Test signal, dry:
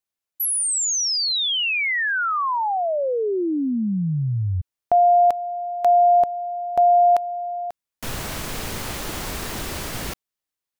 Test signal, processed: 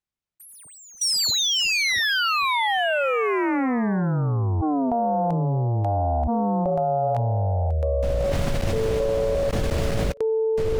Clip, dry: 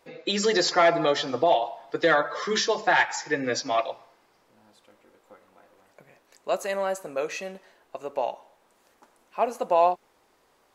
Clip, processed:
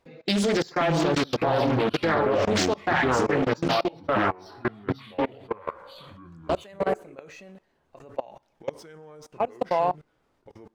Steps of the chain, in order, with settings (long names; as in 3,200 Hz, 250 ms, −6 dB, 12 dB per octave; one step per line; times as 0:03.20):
running median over 3 samples
bass and treble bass +12 dB, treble −2 dB
delay with pitch and tempo change per echo 463 ms, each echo −4 semitones, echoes 2
output level in coarse steps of 24 dB
highs frequency-modulated by the lows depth 0.52 ms
level +2 dB